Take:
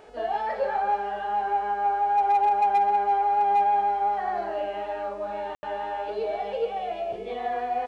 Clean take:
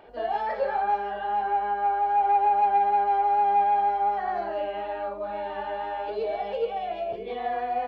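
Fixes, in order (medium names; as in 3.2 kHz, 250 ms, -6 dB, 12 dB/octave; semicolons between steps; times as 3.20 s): clip repair -16.5 dBFS; de-hum 428.5 Hz, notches 23; room tone fill 5.55–5.63 s; inverse comb 251 ms -16 dB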